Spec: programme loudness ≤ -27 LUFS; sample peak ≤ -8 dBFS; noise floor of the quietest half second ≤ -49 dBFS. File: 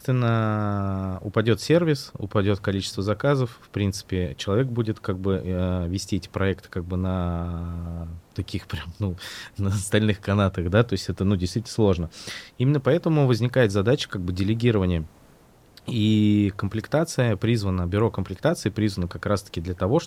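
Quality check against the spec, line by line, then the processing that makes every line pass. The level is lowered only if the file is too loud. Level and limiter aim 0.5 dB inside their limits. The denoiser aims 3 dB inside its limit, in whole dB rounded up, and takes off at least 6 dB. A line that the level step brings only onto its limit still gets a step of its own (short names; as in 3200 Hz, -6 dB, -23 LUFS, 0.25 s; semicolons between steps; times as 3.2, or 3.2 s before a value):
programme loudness -24.5 LUFS: fail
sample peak -5.5 dBFS: fail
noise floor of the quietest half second -54 dBFS: OK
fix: gain -3 dB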